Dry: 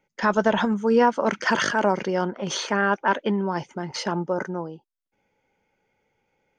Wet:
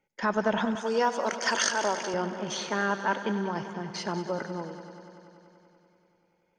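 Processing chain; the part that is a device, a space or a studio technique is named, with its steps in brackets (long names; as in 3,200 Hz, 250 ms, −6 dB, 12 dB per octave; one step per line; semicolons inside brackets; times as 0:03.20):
multi-head tape echo (echo machine with several playback heads 96 ms, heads first and second, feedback 73%, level −15 dB; tape wow and flutter 16 cents)
0:00.75–0:02.14: bass and treble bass −14 dB, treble +13 dB
level −6 dB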